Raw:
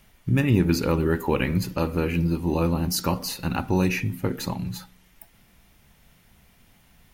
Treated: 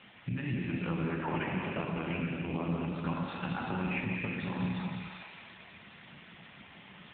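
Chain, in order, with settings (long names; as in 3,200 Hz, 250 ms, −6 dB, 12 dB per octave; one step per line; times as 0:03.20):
loose part that buzzes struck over −26 dBFS, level −31 dBFS
in parallel at 0 dB: brickwall limiter −19.5 dBFS, peak gain reduction 10.5 dB
on the sum: parametric band 430 Hz −9.5 dB 0.78 octaves
feedback echo with a high-pass in the loop 182 ms, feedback 66%, high-pass 770 Hz, level −14 dB
0:01.18–0:02.69: linear-prediction vocoder at 8 kHz pitch kept
high-pass filter 140 Hz 12 dB per octave
downward compressor 12 to 1, threshold −34 dBFS, peak gain reduction 19 dB
low-shelf EQ 270 Hz −4.5 dB
reverb whose tail is shaped and stops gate 420 ms flat, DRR −2 dB
level +3 dB
AMR narrowband 7.95 kbit/s 8,000 Hz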